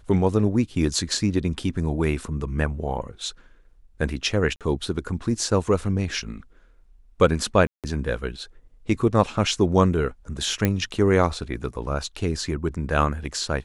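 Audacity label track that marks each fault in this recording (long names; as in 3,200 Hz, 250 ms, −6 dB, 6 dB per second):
4.560000	4.610000	drop-out 47 ms
7.670000	7.840000	drop-out 167 ms
10.650000	10.650000	click −7 dBFS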